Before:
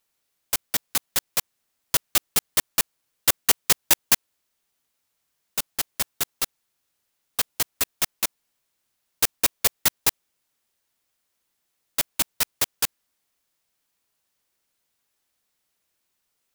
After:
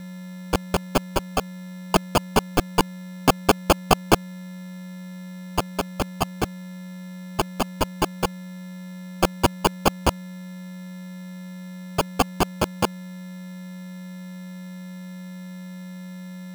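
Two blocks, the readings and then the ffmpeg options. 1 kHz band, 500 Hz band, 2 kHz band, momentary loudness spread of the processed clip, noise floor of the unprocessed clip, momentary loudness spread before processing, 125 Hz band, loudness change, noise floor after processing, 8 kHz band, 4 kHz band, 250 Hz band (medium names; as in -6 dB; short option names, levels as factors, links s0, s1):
+12.0 dB, +14.0 dB, +0.5 dB, 15 LU, -76 dBFS, 9 LU, +16.5 dB, -1.0 dB, -37 dBFS, -9.0 dB, -2.0 dB, +17.0 dB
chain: -af "aeval=exprs='val(0)+0.0224*sin(2*PI*2100*n/s)':c=same,acrusher=samples=23:mix=1:aa=0.000001,aeval=exprs='sgn(val(0))*max(abs(val(0))-0.00596,0)':c=same,volume=1.33"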